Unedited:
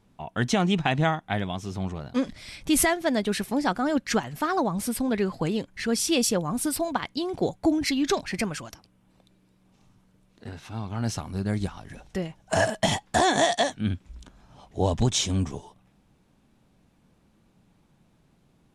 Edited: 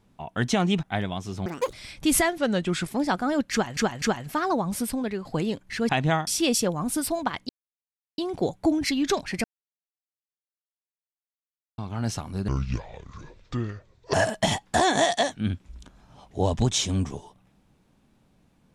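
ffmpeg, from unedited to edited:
-filter_complex "[0:a]asplit=16[a][b][c][d][e][f][g][h][i][j][k][l][m][n][o][p];[a]atrim=end=0.832[q];[b]atrim=start=1.208:end=1.844[r];[c]atrim=start=1.84:end=2.37,asetpts=PTS-STARTPTS,asetrate=86436,aresample=44100[s];[d]atrim=start=2.366:end=3.024[t];[e]atrim=start=3.02:end=3.45,asetpts=PTS-STARTPTS,asetrate=37926,aresample=44100[u];[f]atrim=start=3.446:end=4.342[v];[g]atrim=start=4.088:end=4.342[w];[h]atrim=start=4.088:end=5.32,asetpts=PTS-STARTPTS,afade=t=out:st=0.822:d=0.41:silence=0.375837[x];[i]atrim=start=5.32:end=5.962,asetpts=PTS-STARTPTS,afade=t=in:d=0.004:c=hsin:silence=0.375837[y];[j]atrim=start=0.828:end=1.212[z];[k]atrim=start=5.958:end=7.18,asetpts=PTS-STARTPTS,afade=t=out:st=1.218:d=0.004:c=hsin,apad=pad_dur=0.69[aa];[l]atrim=start=7.18:end=8.44,asetpts=PTS-STARTPTS,afade=t=in:d=0.004:c=hsin,afade=t=out:st=1.256:d=0.004:c=hsin[ab];[m]atrim=start=8.44:end=10.78,asetpts=PTS-STARTPTS,volume=0[ac];[n]atrim=start=10.78:end=11.484,asetpts=PTS-STARTPTS,afade=t=in:d=0.004:c=hsin[ad];[o]atrim=start=11.48:end=12.54,asetpts=PTS-STARTPTS,asetrate=28224,aresample=44100[ae];[p]atrim=start=12.536[af];[q][r]acrossfade=d=0.004:c1=hsin:c2=hsin[ag];[ag][s]acrossfade=d=0.004:c1=hsin:c2=hsin[ah];[ah][t]acrossfade=d=0.004:c1=hsin:c2=hsin[ai];[ai][u]acrossfade=d=0.004:c1=hsin:c2=hsin[aj];[aj][v]acrossfade=d=0.004:c1=hsin:c2=hsin[ak];[ak][w]acrossfade=d=0.004:c1=hsin:c2=hsin[al];[x][y]concat=n=2:v=0:a=1[am];[al][am]acrossfade=d=0.004:c1=hsin:c2=hsin[an];[an][z]acrossfade=d=0.004:c1=hsin:c2=hsin[ao];[aa][ab][ac][ad]concat=n=4:v=0:a=1[ap];[ao][ap]acrossfade=d=0.004:c1=hsin:c2=hsin[aq];[aq][ae]acrossfade=d=0.004:c1=hsin:c2=hsin[ar];[ar][af]acrossfade=d=0.004:c1=hsin:c2=hsin"

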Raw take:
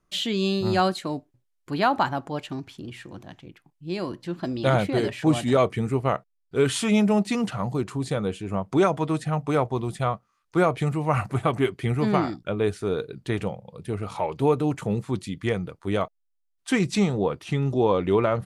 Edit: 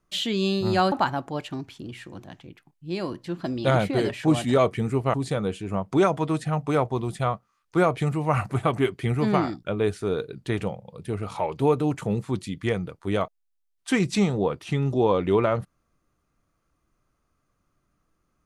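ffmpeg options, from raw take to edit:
-filter_complex "[0:a]asplit=3[a][b][c];[a]atrim=end=0.922[d];[b]atrim=start=1.908:end=6.132[e];[c]atrim=start=7.938[f];[d][e]acrossfade=d=0.004:c1=hsin:c2=hsin[g];[g][f]acrossfade=d=0.004:c1=hsin:c2=hsin"

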